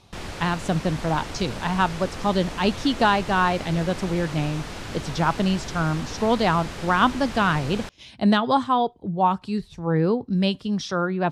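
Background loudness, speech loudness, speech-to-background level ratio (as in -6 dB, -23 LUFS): -35.0 LUFS, -23.5 LUFS, 11.5 dB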